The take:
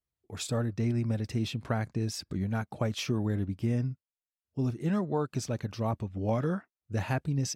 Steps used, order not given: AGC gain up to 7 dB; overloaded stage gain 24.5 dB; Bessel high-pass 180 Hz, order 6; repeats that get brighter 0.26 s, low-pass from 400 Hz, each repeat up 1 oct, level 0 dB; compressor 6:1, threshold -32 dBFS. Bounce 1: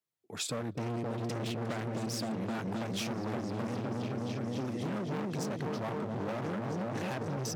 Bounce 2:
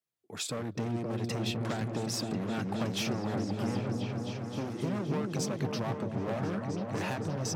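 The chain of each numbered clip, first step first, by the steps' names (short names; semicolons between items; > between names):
repeats that get brighter > AGC > overloaded stage > Bessel high-pass > compressor; AGC > overloaded stage > Bessel high-pass > compressor > repeats that get brighter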